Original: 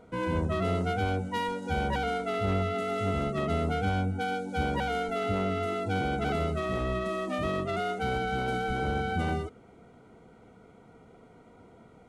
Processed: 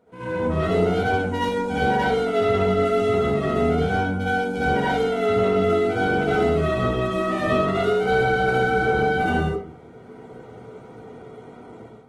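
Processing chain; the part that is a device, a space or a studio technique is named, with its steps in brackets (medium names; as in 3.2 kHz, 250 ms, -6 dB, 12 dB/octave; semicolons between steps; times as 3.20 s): far-field microphone of a smart speaker (reverberation RT60 0.55 s, pre-delay 59 ms, DRR -8.5 dB; high-pass 95 Hz 12 dB/octave; level rider; trim -8 dB; Opus 20 kbps 48 kHz)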